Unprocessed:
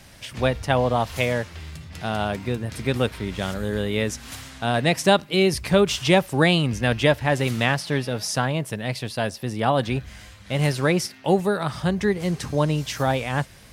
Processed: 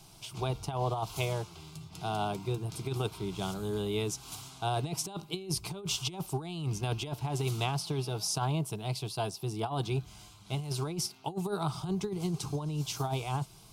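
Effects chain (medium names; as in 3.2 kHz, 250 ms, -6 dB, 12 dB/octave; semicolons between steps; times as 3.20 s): static phaser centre 360 Hz, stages 8; compressor with a negative ratio -25 dBFS, ratio -0.5; trim -6 dB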